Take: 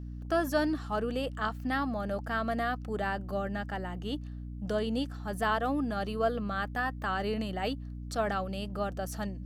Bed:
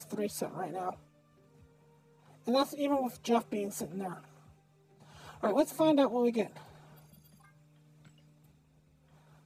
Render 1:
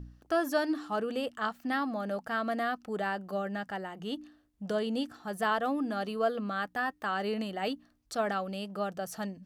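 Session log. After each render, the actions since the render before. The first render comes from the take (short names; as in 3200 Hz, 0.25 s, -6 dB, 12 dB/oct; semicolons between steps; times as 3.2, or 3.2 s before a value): de-hum 60 Hz, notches 5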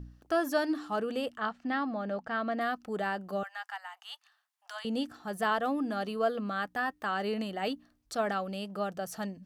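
1.37–2.61 air absorption 120 m; 3.43–4.85 steep high-pass 800 Hz 48 dB/oct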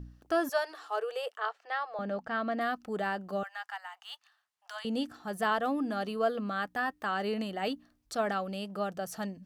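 0.49–1.99 elliptic high-pass 420 Hz; 2.91–4.78 median filter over 3 samples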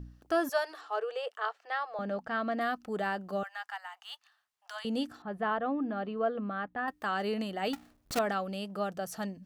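0.81–1.31 air absorption 74 m; 5.22–6.88 air absorption 470 m; 7.73–8.19 half-waves squared off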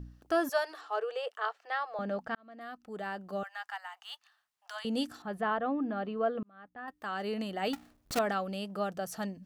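2.35–3.7 fade in; 4.96–5.4 bell 10000 Hz +5 dB -> +14.5 dB 2.4 oct; 6.43–7.58 fade in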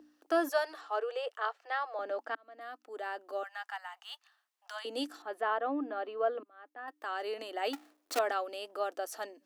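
elliptic high-pass 290 Hz, stop band 40 dB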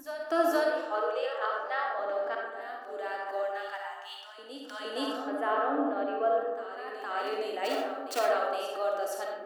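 reverse echo 0.466 s -10 dB; digital reverb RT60 1.3 s, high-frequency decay 0.35×, pre-delay 15 ms, DRR -1 dB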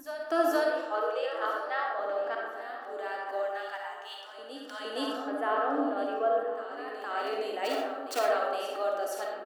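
feedback echo 1.011 s, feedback 35%, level -17.5 dB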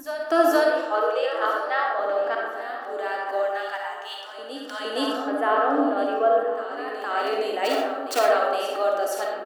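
gain +7.5 dB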